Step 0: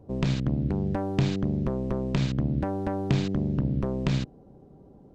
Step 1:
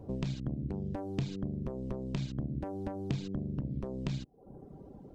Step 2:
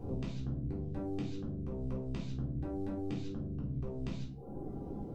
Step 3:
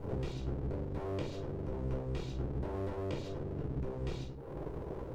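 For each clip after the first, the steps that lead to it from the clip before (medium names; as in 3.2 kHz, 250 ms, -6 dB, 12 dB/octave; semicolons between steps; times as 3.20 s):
compression 2:1, threshold -43 dBFS, peak gain reduction 13 dB; dynamic bell 1.5 kHz, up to -6 dB, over -59 dBFS, Q 0.81; reverb removal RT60 0.71 s; trim +3.5 dB
compression 6:1, threshold -44 dBFS, peak gain reduction 15 dB; simulated room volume 330 m³, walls furnished, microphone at 3.7 m
comb filter that takes the minimum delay 2.1 ms; trim +3 dB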